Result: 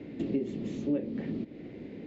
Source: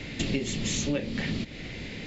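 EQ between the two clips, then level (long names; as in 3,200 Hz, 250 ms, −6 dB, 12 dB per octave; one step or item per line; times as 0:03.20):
resonant band-pass 330 Hz, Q 1.6
+2.0 dB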